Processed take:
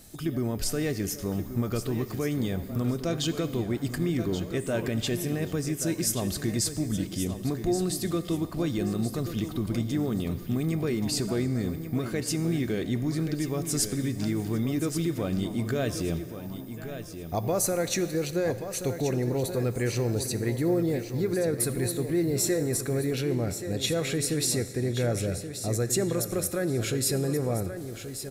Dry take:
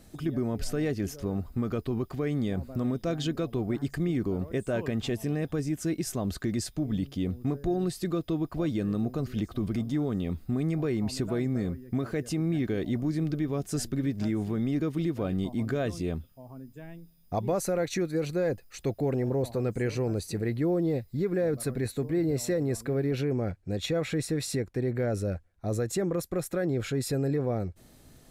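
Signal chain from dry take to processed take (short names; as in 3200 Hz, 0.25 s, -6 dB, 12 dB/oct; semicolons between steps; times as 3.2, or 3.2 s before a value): high shelf 3800 Hz +11.5 dB; feedback echo 1.129 s, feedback 26%, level -10 dB; on a send at -11.5 dB: reverb RT60 2.4 s, pre-delay 4 ms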